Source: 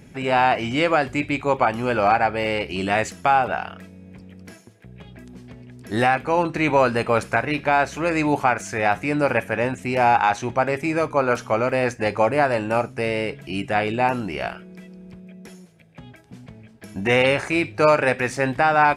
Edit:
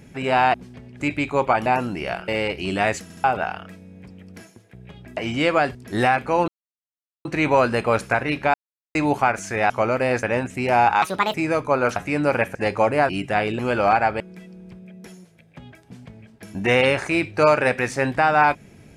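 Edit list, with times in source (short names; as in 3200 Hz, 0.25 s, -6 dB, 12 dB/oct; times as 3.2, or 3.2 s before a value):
0.54–1.12 swap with 5.28–5.74
1.78–2.39 swap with 13.99–14.61
3.14 stutter in place 0.07 s, 3 plays
6.47 insert silence 0.77 s
7.76–8.17 mute
8.92–9.51 swap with 11.42–11.95
10.3–10.8 speed 156%
12.49–13.49 cut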